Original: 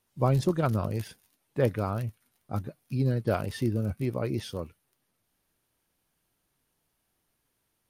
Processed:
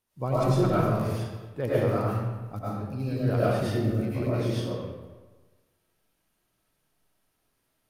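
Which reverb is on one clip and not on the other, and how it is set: digital reverb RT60 1.3 s, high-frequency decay 0.7×, pre-delay 65 ms, DRR -9 dB; gain -6.5 dB

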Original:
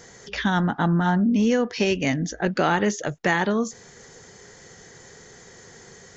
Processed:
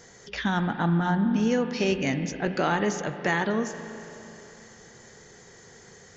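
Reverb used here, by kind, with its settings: spring tank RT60 3.3 s, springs 36/41 ms, chirp 30 ms, DRR 8.5 dB; gain -4 dB

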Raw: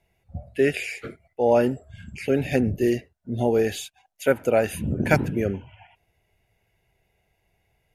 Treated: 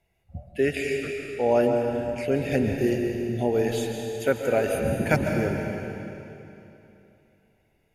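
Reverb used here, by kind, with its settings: digital reverb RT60 3 s, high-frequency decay 0.95×, pre-delay 95 ms, DRR 2.5 dB; gain -3 dB

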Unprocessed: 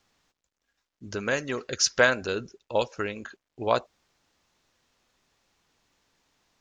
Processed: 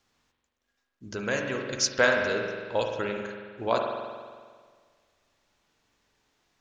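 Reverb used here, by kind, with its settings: spring tank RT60 1.7 s, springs 44 ms, chirp 30 ms, DRR 2 dB; gain -2.5 dB

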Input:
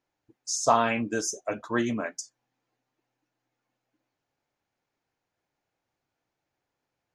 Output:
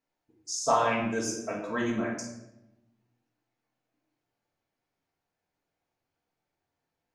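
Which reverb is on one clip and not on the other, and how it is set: shoebox room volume 330 m³, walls mixed, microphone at 1.6 m; gain -6.5 dB

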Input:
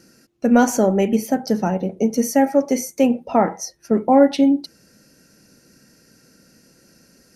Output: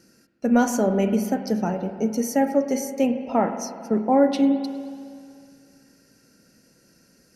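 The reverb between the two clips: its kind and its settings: spring tank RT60 2.3 s, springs 46/51 ms, chirp 65 ms, DRR 8.5 dB; gain -5 dB

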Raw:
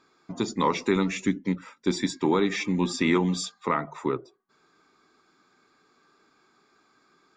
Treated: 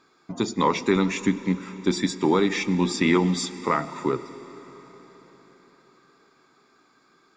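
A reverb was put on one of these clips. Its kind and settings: digital reverb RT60 4.9 s, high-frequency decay 0.95×, pre-delay 55 ms, DRR 14.5 dB; gain +2.5 dB

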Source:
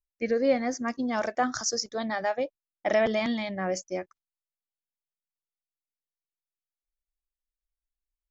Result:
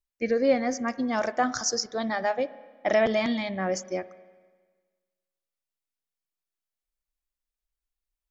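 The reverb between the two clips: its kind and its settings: spring tank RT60 1.5 s, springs 31/50 ms, chirp 55 ms, DRR 16 dB; gain +1.5 dB

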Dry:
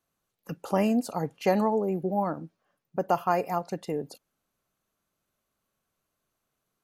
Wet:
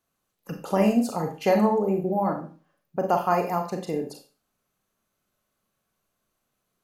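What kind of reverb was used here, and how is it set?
Schroeder reverb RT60 0.36 s, combs from 30 ms, DRR 3.5 dB; gain +1.5 dB

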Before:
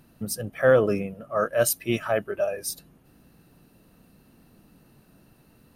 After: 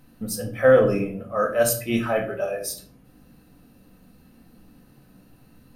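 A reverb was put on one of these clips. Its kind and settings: shoebox room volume 450 m³, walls furnished, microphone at 2 m; gain -1 dB

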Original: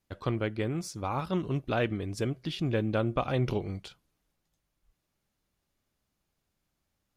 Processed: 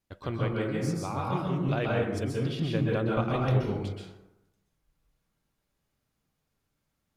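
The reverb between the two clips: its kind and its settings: plate-style reverb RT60 0.93 s, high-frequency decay 0.45×, pre-delay 0.115 s, DRR -3 dB; gain -3.5 dB

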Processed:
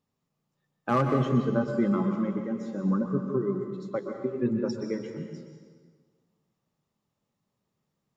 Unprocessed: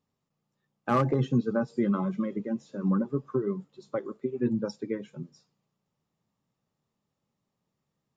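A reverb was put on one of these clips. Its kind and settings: plate-style reverb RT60 1.6 s, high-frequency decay 0.85×, pre-delay 0.11 s, DRR 4.5 dB

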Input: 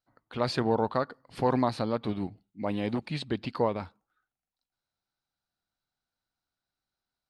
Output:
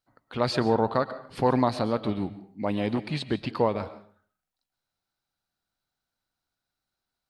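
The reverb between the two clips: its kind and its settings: digital reverb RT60 0.49 s, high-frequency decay 0.65×, pre-delay 90 ms, DRR 13.5 dB; gain +3 dB

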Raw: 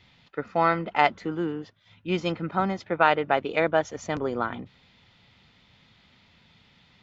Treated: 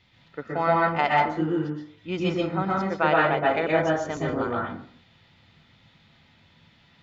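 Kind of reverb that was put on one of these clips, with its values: plate-style reverb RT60 0.52 s, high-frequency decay 0.5×, pre-delay 0.11 s, DRR -3.5 dB; gain -4 dB

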